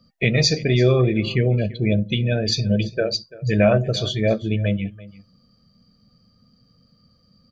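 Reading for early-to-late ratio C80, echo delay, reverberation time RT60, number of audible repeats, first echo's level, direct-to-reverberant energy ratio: no reverb audible, 339 ms, no reverb audible, 1, −19.5 dB, no reverb audible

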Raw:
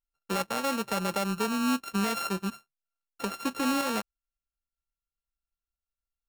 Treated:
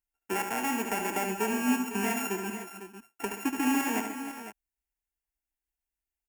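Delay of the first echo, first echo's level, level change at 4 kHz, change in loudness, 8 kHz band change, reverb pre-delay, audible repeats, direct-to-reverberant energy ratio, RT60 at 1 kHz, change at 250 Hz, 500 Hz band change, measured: 73 ms, −7.0 dB, −5.5 dB, −0.5 dB, +2.5 dB, no reverb audible, 5, no reverb audible, no reverb audible, 0.0 dB, −1.0 dB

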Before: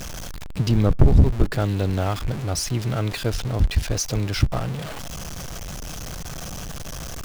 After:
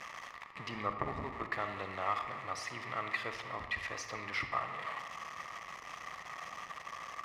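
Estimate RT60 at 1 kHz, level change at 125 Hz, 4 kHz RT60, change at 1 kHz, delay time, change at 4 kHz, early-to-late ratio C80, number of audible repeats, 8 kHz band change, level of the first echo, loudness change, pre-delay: 1.6 s, −30.0 dB, 0.90 s, −3.0 dB, no echo audible, −14.5 dB, 9.0 dB, no echo audible, −20.5 dB, no echo audible, −15.5 dB, 35 ms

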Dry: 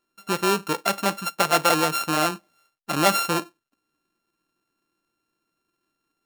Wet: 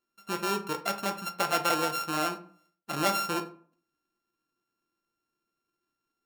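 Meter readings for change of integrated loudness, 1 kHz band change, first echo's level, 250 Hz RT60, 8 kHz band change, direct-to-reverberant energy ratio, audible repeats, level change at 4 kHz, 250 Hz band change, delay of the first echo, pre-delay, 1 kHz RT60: −7.0 dB, −6.5 dB, no echo audible, 0.60 s, −8.5 dB, 5.5 dB, no echo audible, −7.5 dB, −7.5 dB, no echo audible, 8 ms, 0.45 s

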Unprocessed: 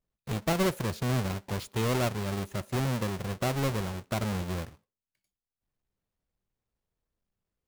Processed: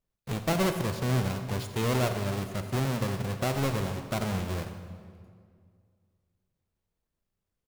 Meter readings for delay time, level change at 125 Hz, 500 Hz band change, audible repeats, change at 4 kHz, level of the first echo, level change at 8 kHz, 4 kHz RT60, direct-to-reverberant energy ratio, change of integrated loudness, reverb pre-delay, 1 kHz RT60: 87 ms, +1.5 dB, +1.0 dB, 1, +0.5 dB, −15.5 dB, +0.5 dB, 1.5 s, 7.5 dB, +1.0 dB, 28 ms, 2.0 s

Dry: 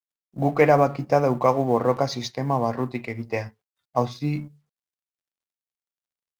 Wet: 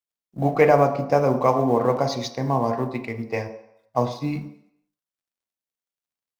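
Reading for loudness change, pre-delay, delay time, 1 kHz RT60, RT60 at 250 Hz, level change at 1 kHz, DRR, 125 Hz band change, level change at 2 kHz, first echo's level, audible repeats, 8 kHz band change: +1.0 dB, 24 ms, no echo audible, 0.80 s, 0.55 s, +1.0 dB, 8.5 dB, +0.5 dB, 0.0 dB, no echo audible, no echo audible, can't be measured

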